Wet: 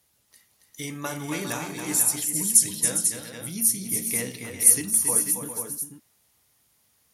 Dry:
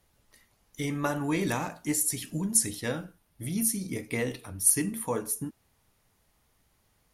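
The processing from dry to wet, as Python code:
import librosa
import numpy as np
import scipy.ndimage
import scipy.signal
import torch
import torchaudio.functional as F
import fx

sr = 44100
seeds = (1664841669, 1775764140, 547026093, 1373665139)

p1 = scipy.signal.sosfilt(scipy.signal.butter(2, 77.0, 'highpass', fs=sr, output='sos'), x)
p2 = fx.high_shelf(p1, sr, hz=3000.0, db=12.0)
p3 = p2 + fx.echo_multitap(p2, sr, ms=(276, 404, 492), db=(-6.5, -10.0, -7.0), dry=0)
y = p3 * 10.0 ** (-4.5 / 20.0)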